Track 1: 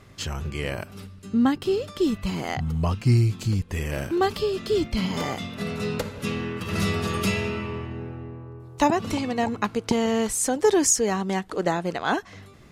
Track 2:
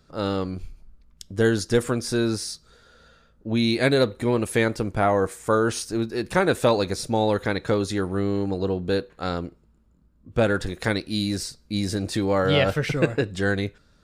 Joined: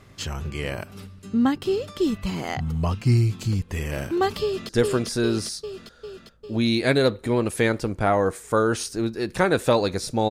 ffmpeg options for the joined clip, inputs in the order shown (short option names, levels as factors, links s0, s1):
-filter_complex "[0:a]apad=whole_dur=10.3,atrim=end=10.3,atrim=end=4.692[s0];[1:a]atrim=start=1.648:end=7.26[s1];[s0][s1]acrossfade=d=0.004:c1=hsin:c2=hsin,asplit=2[s2][s3];[s3]afade=t=in:st=4.43:d=0.01,afade=t=out:st=4.69:d=0.01,aecho=0:1:400|800|1200|1600|2000|2400|2800|3200|3600|4000|4400:0.841395|0.546907|0.355489|0.231068|0.150194|0.0976263|0.0634571|0.0412471|0.0268106|0.0174269|0.0113275[s4];[s2][s4]amix=inputs=2:normalize=0"